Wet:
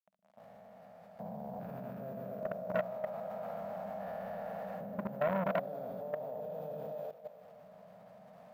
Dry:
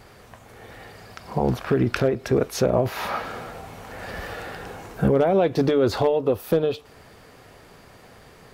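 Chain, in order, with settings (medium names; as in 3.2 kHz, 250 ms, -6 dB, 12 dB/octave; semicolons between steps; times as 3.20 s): spectrogram pixelated in time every 400 ms; careless resampling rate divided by 3×, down filtered, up zero stuff; level rider gain up to 12 dB; bit crusher 5-bit; two resonant band-passes 350 Hz, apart 1.7 oct; on a send: two-band feedback delay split 430 Hz, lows 114 ms, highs 306 ms, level -5 dB; on the sum: level held to a coarse grid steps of 14 dB; bass shelf 370 Hz -6.5 dB; transformer saturation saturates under 1 kHz; trim +3 dB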